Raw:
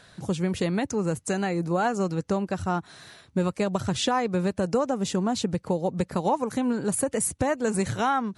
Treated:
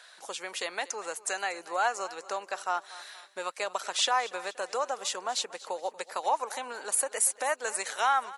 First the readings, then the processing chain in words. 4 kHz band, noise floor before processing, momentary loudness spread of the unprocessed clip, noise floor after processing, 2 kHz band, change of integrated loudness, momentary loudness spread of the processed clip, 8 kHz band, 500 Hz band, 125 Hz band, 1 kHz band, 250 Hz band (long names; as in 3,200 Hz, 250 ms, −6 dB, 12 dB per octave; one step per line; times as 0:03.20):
+2.0 dB, −55 dBFS, 4 LU, −55 dBFS, +1.5 dB, −4.5 dB, 11 LU, +2.0 dB, −8.0 dB, below −35 dB, −1.0 dB, −26.0 dB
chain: Bessel high-pass filter 890 Hz, order 4
on a send: repeating echo 237 ms, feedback 47%, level −18.5 dB
on the sum: level +2 dB